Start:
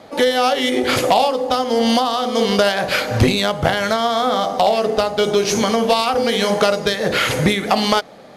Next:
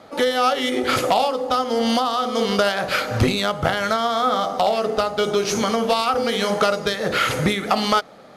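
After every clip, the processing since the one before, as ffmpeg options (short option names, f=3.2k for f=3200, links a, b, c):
-af "equalizer=f=1.3k:t=o:w=0.22:g=8.5,volume=-4dB"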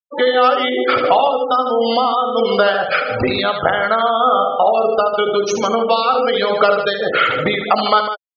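-af "afftfilt=real='re*gte(hypot(re,im),0.1)':imag='im*gte(hypot(re,im),0.1)':win_size=1024:overlap=0.75,bass=f=250:g=-12,treble=f=4k:g=-4,aecho=1:1:75.8|151.6:0.355|0.316,volume=5.5dB"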